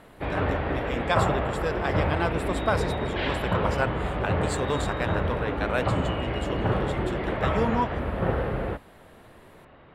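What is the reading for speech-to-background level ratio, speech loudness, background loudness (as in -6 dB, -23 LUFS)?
-4.0 dB, -32.0 LUFS, -28.0 LUFS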